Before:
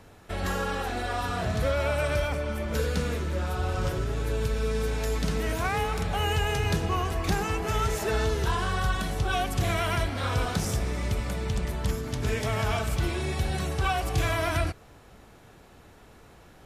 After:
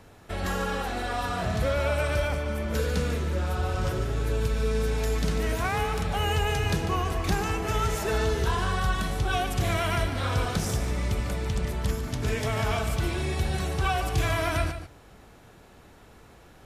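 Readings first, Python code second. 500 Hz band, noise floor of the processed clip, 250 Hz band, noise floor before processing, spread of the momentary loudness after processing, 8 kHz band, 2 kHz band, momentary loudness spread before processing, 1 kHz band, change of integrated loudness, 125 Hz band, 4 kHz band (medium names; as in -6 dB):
+0.5 dB, -52 dBFS, +0.5 dB, -53 dBFS, 4 LU, +0.5 dB, +0.5 dB, 4 LU, +0.5 dB, +0.5 dB, +1.0 dB, +0.5 dB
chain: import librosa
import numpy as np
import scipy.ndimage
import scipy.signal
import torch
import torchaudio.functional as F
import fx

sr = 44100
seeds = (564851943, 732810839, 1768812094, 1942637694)

y = x + 10.0 ** (-10.5 / 20.0) * np.pad(x, (int(146 * sr / 1000.0), 0))[:len(x)]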